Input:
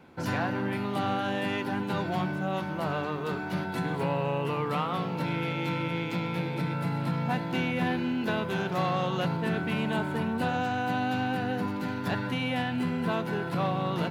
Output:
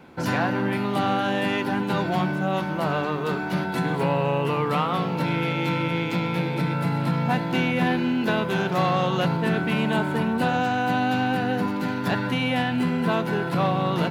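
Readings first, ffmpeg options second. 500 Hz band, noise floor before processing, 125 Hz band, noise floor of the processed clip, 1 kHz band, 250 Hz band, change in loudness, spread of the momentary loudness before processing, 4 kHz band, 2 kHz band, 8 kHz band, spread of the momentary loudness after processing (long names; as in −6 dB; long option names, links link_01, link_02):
+6.0 dB, −34 dBFS, +5.5 dB, −28 dBFS, +6.0 dB, +6.0 dB, +6.0 dB, 3 LU, +6.0 dB, +6.0 dB, +6.0 dB, 3 LU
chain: -af "equalizer=frequency=98:width=7.2:gain=-9.5,volume=6dB"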